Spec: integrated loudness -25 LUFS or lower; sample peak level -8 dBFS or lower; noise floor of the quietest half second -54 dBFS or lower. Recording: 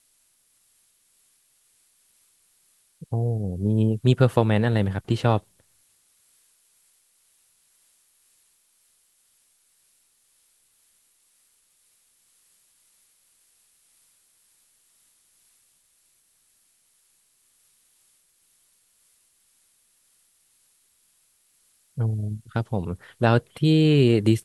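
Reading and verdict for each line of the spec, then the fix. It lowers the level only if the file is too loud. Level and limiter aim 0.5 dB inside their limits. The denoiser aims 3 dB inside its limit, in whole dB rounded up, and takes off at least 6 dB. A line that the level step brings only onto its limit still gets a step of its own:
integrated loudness -22.5 LUFS: fail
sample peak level -3.5 dBFS: fail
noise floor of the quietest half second -65 dBFS: OK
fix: gain -3 dB; limiter -8.5 dBFS

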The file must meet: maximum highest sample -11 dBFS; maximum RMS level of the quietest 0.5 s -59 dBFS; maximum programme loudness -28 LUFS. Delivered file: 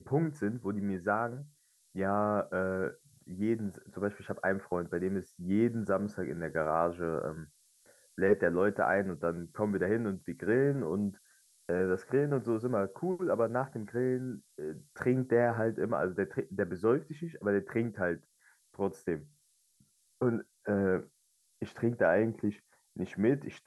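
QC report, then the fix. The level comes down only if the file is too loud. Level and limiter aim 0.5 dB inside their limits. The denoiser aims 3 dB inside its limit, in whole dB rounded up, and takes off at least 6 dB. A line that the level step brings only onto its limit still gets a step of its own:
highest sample -13.0 dBFS: OK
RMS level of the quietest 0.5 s -72 dBFS: OK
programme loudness -32.5 LUFS: OK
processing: none

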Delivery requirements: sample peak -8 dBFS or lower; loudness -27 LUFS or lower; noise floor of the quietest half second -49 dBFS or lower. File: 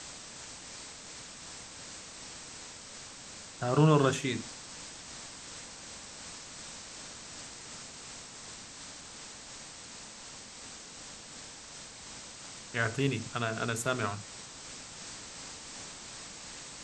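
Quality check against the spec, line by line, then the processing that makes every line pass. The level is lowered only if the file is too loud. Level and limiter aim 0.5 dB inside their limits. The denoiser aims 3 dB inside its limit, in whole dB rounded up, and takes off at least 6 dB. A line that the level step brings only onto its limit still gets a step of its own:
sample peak -12.0 dBFS: OK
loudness -37.0 LUFS: OK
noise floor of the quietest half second -48 dBFS: fail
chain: denoiser 6 dB, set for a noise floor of -48 dBFS

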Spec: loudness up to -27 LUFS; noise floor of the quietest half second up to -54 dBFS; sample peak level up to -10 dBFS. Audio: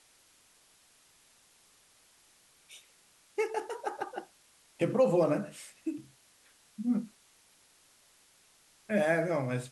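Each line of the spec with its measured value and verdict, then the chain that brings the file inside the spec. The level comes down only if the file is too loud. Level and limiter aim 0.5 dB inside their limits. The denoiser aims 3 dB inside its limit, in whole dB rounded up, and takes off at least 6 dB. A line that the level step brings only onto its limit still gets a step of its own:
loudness -32.0 LUFS: OK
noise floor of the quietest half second -64 dBFS: OK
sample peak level -14.0 dBFS: OK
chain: none

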